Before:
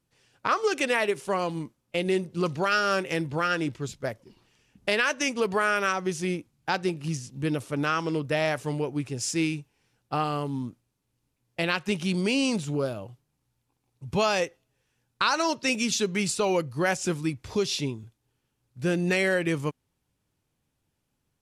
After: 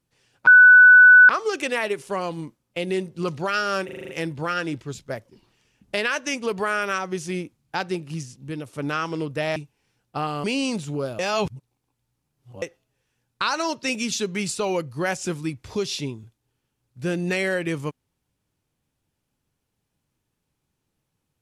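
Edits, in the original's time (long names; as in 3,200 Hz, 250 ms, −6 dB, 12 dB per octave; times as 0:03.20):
0:00.47: insert tone 1,490 Hz −6.5 dBFS 0.82 s
0:03.03: stutter 0.04 s, 7 plays
0:06.94–0:07.67: fade out, to −7 dB
0:08.50–0:09.53: remove
0:10.41–0:12.24: remove
0:12.99–0:14.42: reverse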